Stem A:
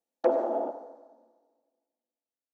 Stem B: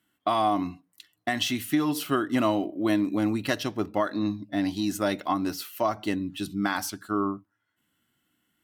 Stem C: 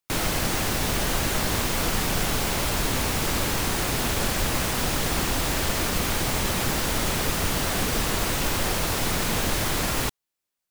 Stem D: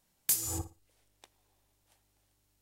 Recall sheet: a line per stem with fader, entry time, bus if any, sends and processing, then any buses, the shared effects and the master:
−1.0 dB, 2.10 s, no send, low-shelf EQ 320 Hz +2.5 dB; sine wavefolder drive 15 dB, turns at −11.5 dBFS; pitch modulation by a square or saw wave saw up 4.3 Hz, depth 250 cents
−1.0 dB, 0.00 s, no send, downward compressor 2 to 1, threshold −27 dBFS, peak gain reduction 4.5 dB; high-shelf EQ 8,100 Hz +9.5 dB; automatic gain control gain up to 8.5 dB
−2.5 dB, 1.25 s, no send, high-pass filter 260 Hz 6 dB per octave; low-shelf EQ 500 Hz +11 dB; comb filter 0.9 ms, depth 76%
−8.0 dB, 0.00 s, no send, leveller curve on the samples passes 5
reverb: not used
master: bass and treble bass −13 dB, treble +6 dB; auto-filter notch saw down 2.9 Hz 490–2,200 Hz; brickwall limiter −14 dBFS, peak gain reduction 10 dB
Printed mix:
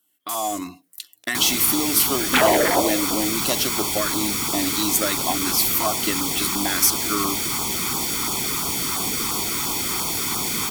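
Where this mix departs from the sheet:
stem D −8.0 dB → −15.5 dB
master: missing brickwall limiter −14 dBFS, peak gain reduction 10 dB

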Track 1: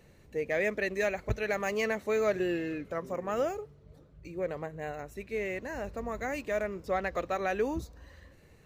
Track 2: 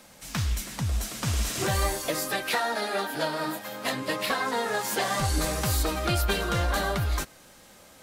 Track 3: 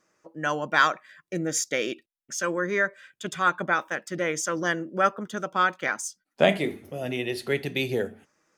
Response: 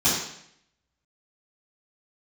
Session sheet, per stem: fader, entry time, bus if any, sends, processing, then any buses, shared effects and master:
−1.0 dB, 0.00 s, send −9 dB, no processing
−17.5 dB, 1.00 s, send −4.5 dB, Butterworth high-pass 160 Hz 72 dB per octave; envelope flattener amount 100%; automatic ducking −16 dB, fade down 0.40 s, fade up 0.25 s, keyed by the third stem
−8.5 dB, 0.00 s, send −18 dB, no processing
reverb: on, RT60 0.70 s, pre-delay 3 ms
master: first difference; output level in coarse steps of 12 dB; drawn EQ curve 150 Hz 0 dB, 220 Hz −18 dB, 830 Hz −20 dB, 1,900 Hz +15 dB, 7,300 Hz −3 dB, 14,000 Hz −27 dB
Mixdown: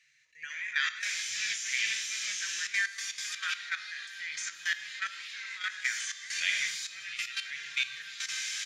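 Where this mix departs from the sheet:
stem 1: send −9 dB → −16 dB
stem 3 −8.5 dB → −2.0 dB

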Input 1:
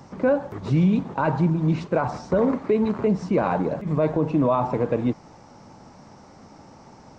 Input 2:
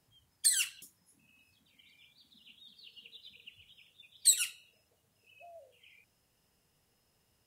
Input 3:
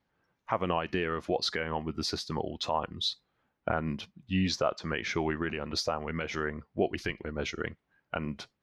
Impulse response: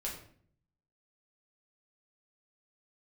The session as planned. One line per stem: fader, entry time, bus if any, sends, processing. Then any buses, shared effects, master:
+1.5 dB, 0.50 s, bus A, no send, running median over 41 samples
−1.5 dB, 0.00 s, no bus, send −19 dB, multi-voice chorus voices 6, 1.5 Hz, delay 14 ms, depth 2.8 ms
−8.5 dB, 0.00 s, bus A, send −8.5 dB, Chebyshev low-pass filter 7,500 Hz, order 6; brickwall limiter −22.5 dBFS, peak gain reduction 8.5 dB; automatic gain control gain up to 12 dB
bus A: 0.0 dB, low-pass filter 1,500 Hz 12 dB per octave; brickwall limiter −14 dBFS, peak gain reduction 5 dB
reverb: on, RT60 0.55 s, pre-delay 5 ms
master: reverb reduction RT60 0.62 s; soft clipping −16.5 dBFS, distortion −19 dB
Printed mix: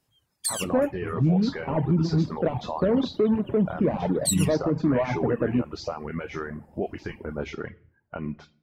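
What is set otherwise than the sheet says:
stem 2: missing multi-voice chorus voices 6, 1.5 Hz, delay 14 ms, depth 2.8 ms
master: missing soft clipping −16.5 dBFS, distortion −19 dB

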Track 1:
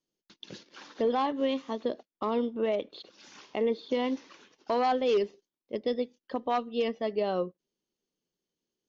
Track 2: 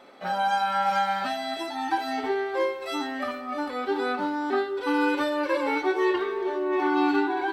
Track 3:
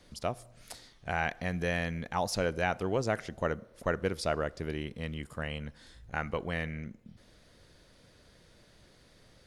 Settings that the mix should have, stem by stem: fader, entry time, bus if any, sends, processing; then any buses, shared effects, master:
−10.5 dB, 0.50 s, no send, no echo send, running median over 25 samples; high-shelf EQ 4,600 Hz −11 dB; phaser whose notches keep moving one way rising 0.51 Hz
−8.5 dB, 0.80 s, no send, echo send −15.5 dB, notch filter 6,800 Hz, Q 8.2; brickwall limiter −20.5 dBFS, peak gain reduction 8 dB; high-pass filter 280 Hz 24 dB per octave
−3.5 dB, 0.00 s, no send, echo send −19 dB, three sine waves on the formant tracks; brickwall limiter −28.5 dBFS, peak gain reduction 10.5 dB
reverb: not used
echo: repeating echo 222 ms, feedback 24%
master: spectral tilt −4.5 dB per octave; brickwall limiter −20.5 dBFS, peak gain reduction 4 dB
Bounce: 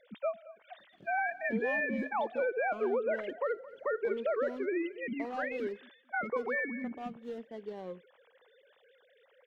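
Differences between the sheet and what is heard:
stem 2: muted
stem 3 −3.5 dB → +4.0 dB
master: missing spectral tilt −4.5 dB per octave

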